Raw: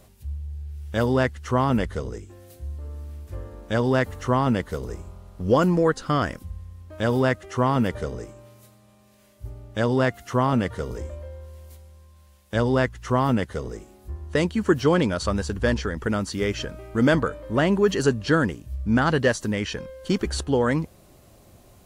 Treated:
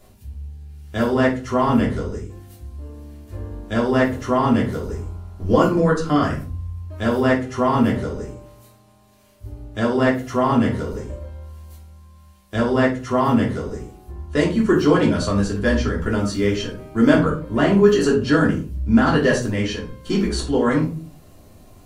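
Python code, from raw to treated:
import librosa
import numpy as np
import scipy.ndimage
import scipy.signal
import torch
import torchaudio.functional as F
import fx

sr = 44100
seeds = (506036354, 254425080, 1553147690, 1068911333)

y = fx.room_shoebox(x, sr, seeds[0], volume_m3=230.0, walls='furnished', distance_m=3.1)
y = y * librosa.db_to_amplitude(-3.0)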